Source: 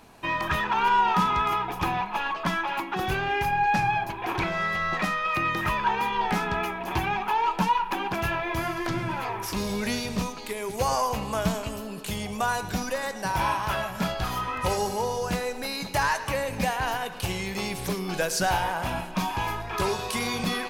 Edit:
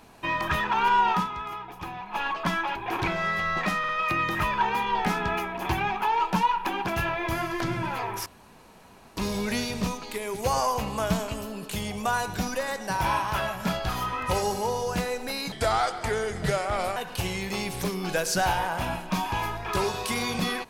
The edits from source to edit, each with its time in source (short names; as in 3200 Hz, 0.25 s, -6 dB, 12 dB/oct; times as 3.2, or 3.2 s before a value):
1.11–2.21 dip -10 dB, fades 0.18 s
2.75–4.11 cut
5.15 stutter 0.05 s, 3 plays
9.52 insert room tone 0.91 s
15.87–17.01 speed 79%